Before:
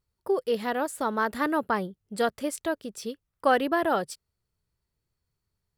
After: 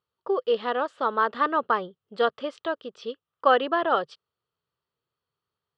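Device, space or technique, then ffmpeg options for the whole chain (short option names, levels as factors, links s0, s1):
kitchen radio: -af "highpass=190,equalizer=f=200:t=q:w=4:g=-7,equalizer=f=300:t=q:w=4:g=-5,equalizer=f=480:t=q:w=4:g=4,equalizer=f=1200:t=q:w=4:g=9,equalizer=f=2200:t=q:w=4:g=-6,equalizer=f=3100:t=q:w=4:g=7,lowpass=f=4100:w=0.5412,lowpass=f=4100:w=1.3066"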